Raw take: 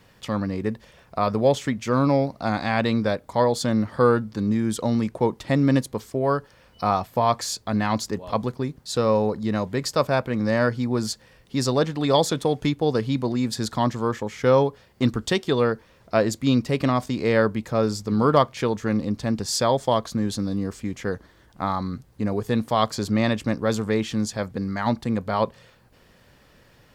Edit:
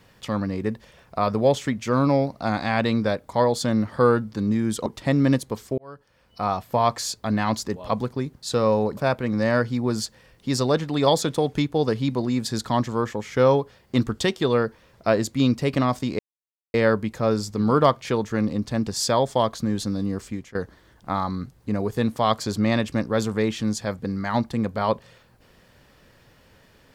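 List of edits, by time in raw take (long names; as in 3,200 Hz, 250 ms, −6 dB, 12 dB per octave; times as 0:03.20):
0:04.86–0:05.29: remove
0:06.21–0:07.18: fade in
0:09.40–0:10.04: remove
0:17.26: splice in silence 0.55 s
0:20.81–0:21.07: fade out, to −19 dB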